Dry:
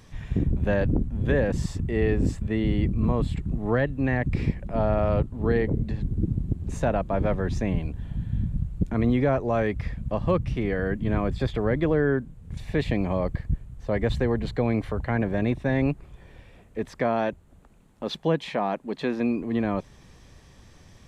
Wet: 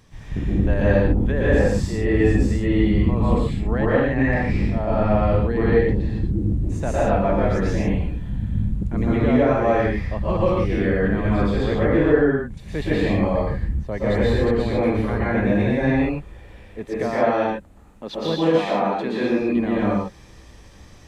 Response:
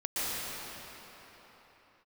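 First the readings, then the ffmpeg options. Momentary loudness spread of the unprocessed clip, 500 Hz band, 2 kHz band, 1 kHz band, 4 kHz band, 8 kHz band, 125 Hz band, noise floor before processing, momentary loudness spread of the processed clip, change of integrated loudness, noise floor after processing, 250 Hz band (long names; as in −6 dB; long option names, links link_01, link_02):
7 LU, +6.0 dB, +6.0 dB, +6.0 dB, +5.5 dB, can't be measured, +4.0 dB, −52 dBFS, 8 LU, +5.5 dB, −45 dBFS, +6.0 dB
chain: -filter_complex "[1:a]atrim=start_sample=2205,afade=type=out:start_time=0.34:duration=0.01,atrim=end_sample=15435[link_01];[0:a][link_01]afir=irnorm=-1:irlink=0"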